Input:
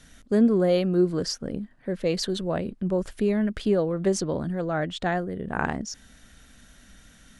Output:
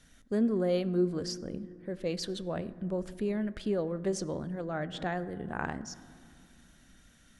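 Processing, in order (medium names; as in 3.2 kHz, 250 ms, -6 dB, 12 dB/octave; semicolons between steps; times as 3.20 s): on a send at -14.5 dB: reverberation RT60 2.4 s, pre-delay 4 ms; 4.94–5.53 s: on the sum: three bands compressed up and down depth 40%; trim -8 dB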